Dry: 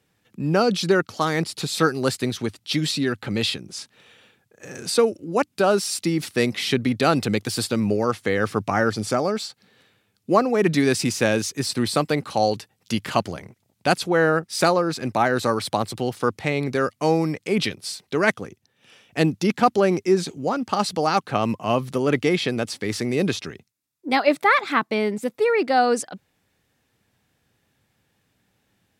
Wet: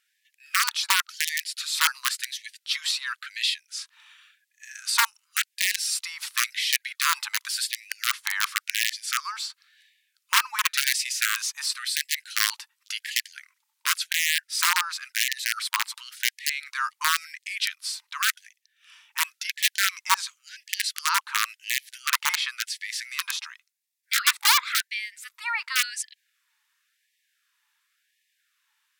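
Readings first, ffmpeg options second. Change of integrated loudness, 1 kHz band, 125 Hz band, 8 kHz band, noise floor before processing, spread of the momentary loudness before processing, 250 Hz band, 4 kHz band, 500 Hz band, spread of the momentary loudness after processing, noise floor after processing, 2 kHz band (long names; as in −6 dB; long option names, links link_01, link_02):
−3.0 dB, −7.0 dB, below −40 dB, +5.5 dB, −70 dBFS, 8 LU, below −40 dB, +4.0 dB, below −40 dB, 11 LU, −77 dBFS, +1.0 dB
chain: -af "aeval=exprs='(mod(3.35*val(0)+1,2)-1)/3.35':channel_layout=same,afftfilt=real='re*gte(b*sr/1024,830*pow(1700/830,0.5+0.5*sin(2*PI*0.93*pts/sr)))':imag='im*gte(b*sr/1024,830*pow(1700/830,0.5+0.5*sin(2*PI*0.93*pts/sr)))':win_size=1024:overlap=0.75"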